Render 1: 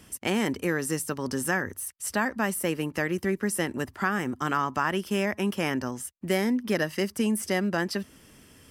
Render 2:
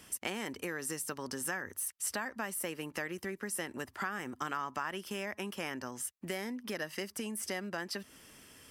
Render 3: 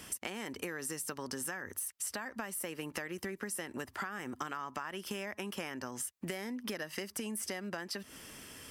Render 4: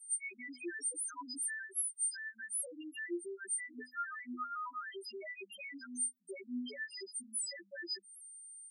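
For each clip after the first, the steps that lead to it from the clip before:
compression 4:1, threshold -32 dBFS, peak gain reduction 10.5 dB; bass shelf 380 Hz -9.5 dB
compression, threshold -42 dBFS, peak gain reduction 11 dB; trim +6 dB
partials quantised in pitch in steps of 2 st; loudest bins only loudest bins 1; rippled Chebyshev high-pass 240 Hz, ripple 9 dB; trim +10.5 dB

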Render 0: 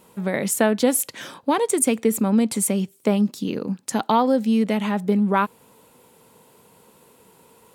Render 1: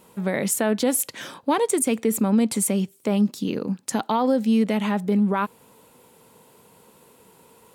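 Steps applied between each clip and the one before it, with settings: peak limiter -12 dBFS, peak gain reduction 6 dB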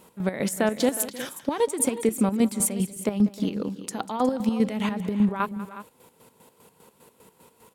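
square tremolo 5 Hz, depth 65%, duty 45%; on a send: multi-tap echo 193/310/363 ms -17/-19.5/-14.5 dB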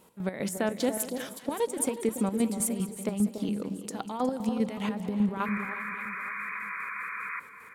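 painted sound noise, 5.45–7.40 s, 980–2500 Hz -31 dBFS; echo whose repeats swap between lows and highs 285 ms, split 940 Hz, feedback 54%, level -8 dB; trim -5.5 dB

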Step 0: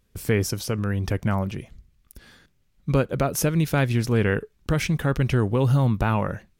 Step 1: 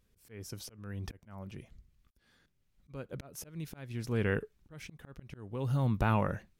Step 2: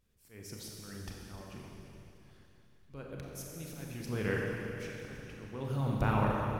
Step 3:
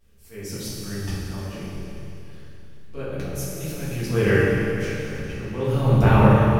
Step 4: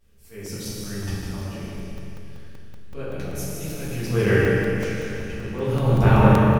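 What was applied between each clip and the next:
slow attack 775 ms; trim -5.5 dB
Schroeder reverb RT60 3.1 s, combs from 29 ms, DRR -3 dB; harmonic-percussive split harmonic -6 dB; trim -1 dB
simulated room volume 86 m³, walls mixed, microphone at 1.6 m; trim +6 dB
on a send: delay 154 ms -6.5 dB; on the sum: crackling interface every 0.19 s, samples 128, zero, from 0.46 s; trim -1 dB

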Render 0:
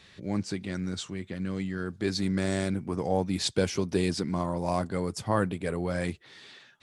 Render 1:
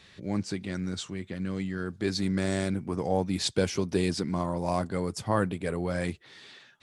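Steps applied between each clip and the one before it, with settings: no audible change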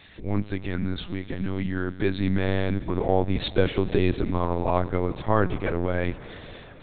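reverberation RT60 5.2 s, pre-delay 29 ms, DRR 14 dB; LPC vocoder at 8 kHz pitch kept; trim +5 dB

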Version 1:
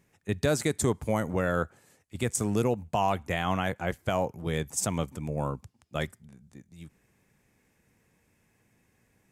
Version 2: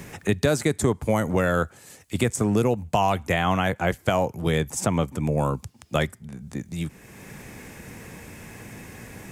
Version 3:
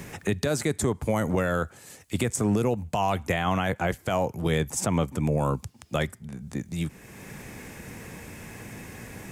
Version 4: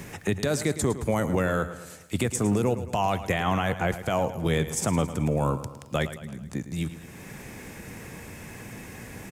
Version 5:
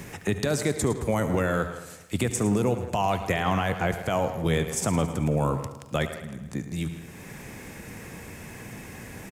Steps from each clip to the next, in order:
three bands compressed up and down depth 70%; trim +6 dB
peak limiter -14.5 dBFS, peak gain reduction 9 dB
on a send: feedback delay 109 ms, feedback 52%, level -13 dB; on the sum: short-mantissa float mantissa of 6-bit
speakerphone echo 160 ms, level -12 dB; on a send at -15.5 dB: reverberation, pre-delay 70 ms

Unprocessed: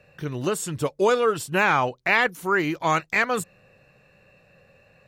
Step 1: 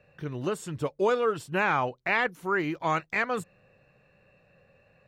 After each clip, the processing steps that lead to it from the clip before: treble shelf 4.8 kHz -11 dB; trim -4.5 dB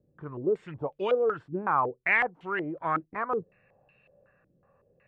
step-sequenced low-pass 5.4 Hz 310–2900 Hz; trim -6 dB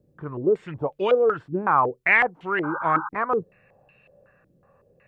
painted sound noise, 2.63–3.09 s, 790–1600 Hz -37 dBFS; trim +6 dB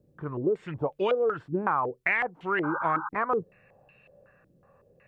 compression 6:1, threshold -21 dBFS, peak gain reduction 8.5 dB; trim -1 dB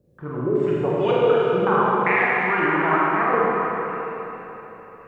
Schroeder reverb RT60 3.7 s, combs from 33 ms, DRR -7 dB; trim +1 dB

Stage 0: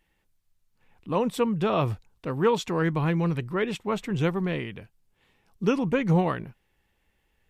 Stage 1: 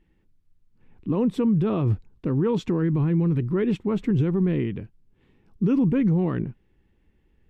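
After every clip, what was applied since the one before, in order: low-pass 2.1 kHz 6 dB/octave; resonant low shelf 460 Hz +9 dB, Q 1.5; peak limiter -15 dBFS, peak gain reduction 11 dB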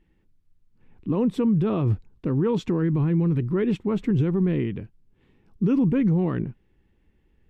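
no audible change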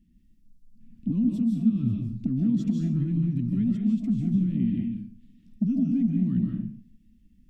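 FFT filter 150 Hz 0 dB, 230 Hz +13 dB, 420 Hz -24 dB, 750 Hz -29 dB, 5.4 kHz +2 dB; compression 4:1, threshold -24 dBFS, peak gain reduction 15 dB; reverberation RT60 0.45 s, pre-delay 115 ms, DRR -0.5 dB

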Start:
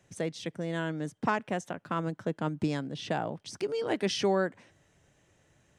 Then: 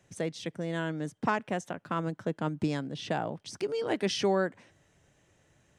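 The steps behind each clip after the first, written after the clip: no audible change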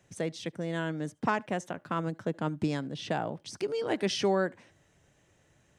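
reverberation, pre-delay 70 ms, DRR 28 dB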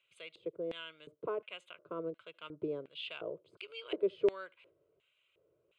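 static phaser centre 1.2 kHz, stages 8; LFO band-pass square 1.4 Hz 420–2700 Hz; trim +3 dB

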